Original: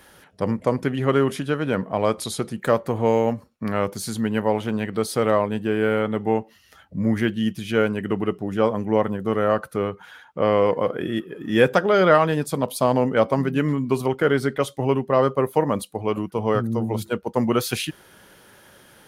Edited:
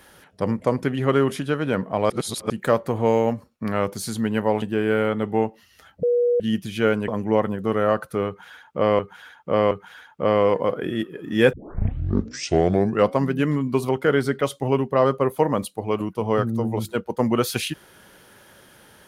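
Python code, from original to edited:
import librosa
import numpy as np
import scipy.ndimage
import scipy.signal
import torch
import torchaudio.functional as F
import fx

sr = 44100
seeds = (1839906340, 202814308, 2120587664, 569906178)

y = fx.edit(x, sr, fx.reverse_span(start_s=2.1, length_s=0.4),
    fx.cut(start_s=4.62, length_s=0.93),
    fx.bleep(start_s=6.96, length_s=0.37, hz=483.0, db=-16.0),
    fx.cut(start_s=8.01, length_s=0.68),
    fx.repeat(start_s=9.88, length_s=0.72, count=3),
    fx.tape_start(start_s=11.7, length_s=1.62), tone=tone)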